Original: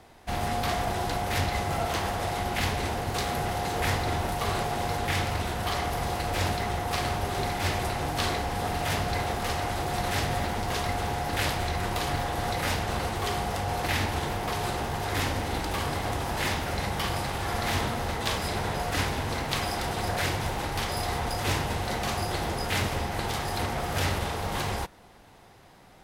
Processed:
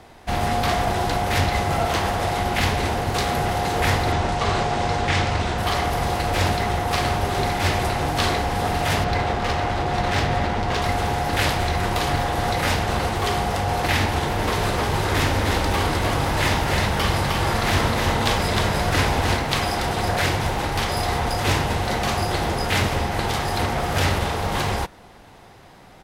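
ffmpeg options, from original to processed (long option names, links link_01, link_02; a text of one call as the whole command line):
ffmpeg -i in.wav -filter_complex "[0:a]asettb=1/sr,asplit=3[link_01][link_02][link_03];[link_01]atrim=end=4.124[link_04];[link_02]atrim=start=4.12:end=5.58,asetpts=PTS-STARTPTS,afade=type=in:duration=0.004:curve=qsin,afade=type=out:start_time=1.456:duration=0.004:curve=qsin,lowpass=frequency=8100:width=0.5412,lowpass=frequency=8100:width=1.3066[link_05];[link_03]atrim=start=5.576[link_06];[link_04][link_05]acrossfade=duration=0.004:curve1=hsin:curve2=qsin[link_07];[link_07][link_06]acrossfade=duration=0.004:curve1=qsin:curve2=hsin,asettb=1/sr,asplit=3[link_08][link_09][link_10];[link_08]atrim=end=9.044[link_11];[link_09]atrim=start=9.04:end=10.82,asetpts=PTS-STARTPTS,afade=type=in:duration=0.004:curve=qsin,afade=type=out:start_time=1.776:duration=0.004:curve=qsin,adynamicsmooth=sensitivity=5.5:basefreq=4100[link_12];[link_10]atrim=start=10.816[link_13];[link_11][link_12]acrossfade=duration=0.004:curve1=hsin:curve2=qsin[link_14];[link_14][link_13]acrossfade=duration=0.004:curve1=qsin:curve2=hsin,asplit=3[link_15][link_16][link_17];[link_15]afade=type=out:start_time=14.37:duration=0.02[link_18];[link_16]aecho=1:1:308:0.668,afade=type=in:start_time=14.37:duration=0.02,afade=type=out:start_time=19.36:duration=0.02[link_19];[link_17]afade=type=in:start_time=19.36:duration=0.02[link_20];[link_18][link_19][link_20]amix=inputs=3:normalize=0,highshelf=frequency=8000:gain=-5,volume=7dB" out.wav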